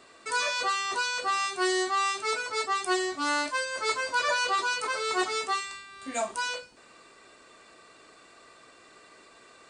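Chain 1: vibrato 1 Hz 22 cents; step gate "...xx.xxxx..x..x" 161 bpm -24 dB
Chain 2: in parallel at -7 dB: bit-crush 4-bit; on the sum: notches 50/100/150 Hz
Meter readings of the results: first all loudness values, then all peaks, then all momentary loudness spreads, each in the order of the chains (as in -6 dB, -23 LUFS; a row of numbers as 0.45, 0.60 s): -31.0, -26.0 LUFS; -14.5, -12.5 dBFS; 8, 7 LU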